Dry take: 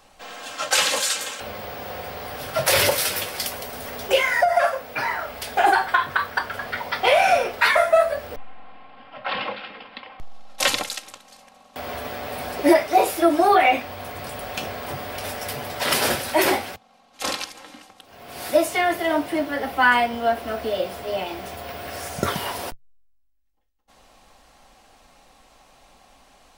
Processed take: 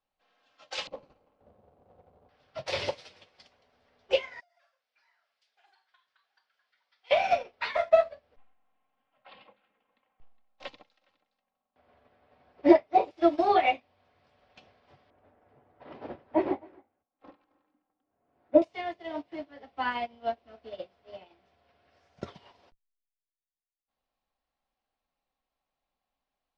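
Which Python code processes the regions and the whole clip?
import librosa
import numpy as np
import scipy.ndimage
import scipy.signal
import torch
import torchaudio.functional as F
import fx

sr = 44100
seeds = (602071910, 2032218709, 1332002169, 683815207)

y = fx.chain(x, sr, fx.median_filter(points=25),
    fx.tilt_shelf(db=6.5, hz=1400.0), at=(0.87, 2.29))
y = fx.chain(y, sr, fx.law_mismatch(coded='mu'),
    fx.differentiator(),
    fx.echo_single(ms=660, db=-17.0), at=(4.4, 7.11))
y = fx.chain(y, sr, fx.lowpass(hz=1800.0, slope=6),
    fx.echo_single(ms=413, db=-14.5), at=(9.47, 13.11))
y = fx.chain(y, sr, fx.lowpass(hz=1200.0, slope=12),
    fx.peak_eq(hz=300.0, db=7.5, octaves=0.41),
    fx.echo_single(ms=266, db=-11.0), at=(15.1, 18.62))
y = scipy.signal.sosfilt(scipy.signal.butter(4, 5000.0, 'lowpass', fs=sr, output='sos'), y)
y = fx.dynamic_eq(y, sr, hz=1500.0, q=2.1, threshold_db=-38.0, ratio=4.0, max_db=-8)
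y = fx.upward_expand(y, sr, threshold_db=-34.0, expansion=2.5)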